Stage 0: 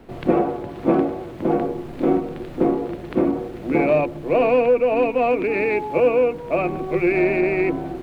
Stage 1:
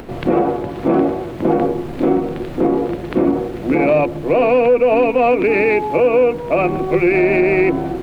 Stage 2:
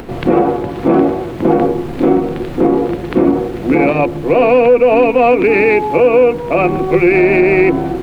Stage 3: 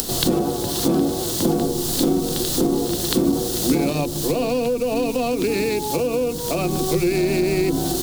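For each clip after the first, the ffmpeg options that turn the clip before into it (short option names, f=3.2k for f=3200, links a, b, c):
-af "acompressor=mode=upward:threshold=-36dB:ratio=2.5,alimiter=limit=-13dB:level=0:latency=1:release=80,volume=7dB"
-af "bandreject=f=610:w=12,volume=4dB"
-filter_complex "[0:a]acrossover=split=280[a][b];[b]acompressor=threshold=-20dB:ratio=6[c];[a][c]amix=inputs=2:normalize=0,aexciter=amount=14.2:drive=8.8:freq=3.7k,volume=-3.5dB"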